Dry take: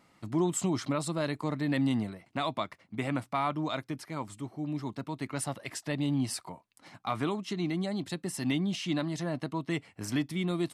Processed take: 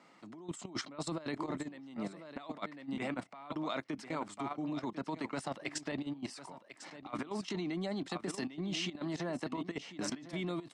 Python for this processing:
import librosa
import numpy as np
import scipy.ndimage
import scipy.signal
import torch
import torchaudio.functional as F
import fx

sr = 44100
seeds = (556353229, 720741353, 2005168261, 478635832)

p1 = scipy.signal.sosfilt(scipy.signal.bessel(6, 250.0, 'highpass', norm='mag', fs=sr, output='sos'), x)
p2 = p1 + fx.echo_single(p1, sr, ms=1047, db=-13.0, dry=0)
p3 = fx.over_compress(p2, sr, threshold_db=-37.0, ratio=-1.0)
p4 = scipy.signal.sosfilt(scipy.signal.butter(4, 8100.0, 'lowpass', fs=sr, output='sos'), p3)
p5 = fx.high_shelf(p4, sr, hz=2700.0, db=-4.0)
p6 = fx.level_steps(p5, sr, step_db=13)
y = p6 * 10.0 ** (2.5 / 20.0)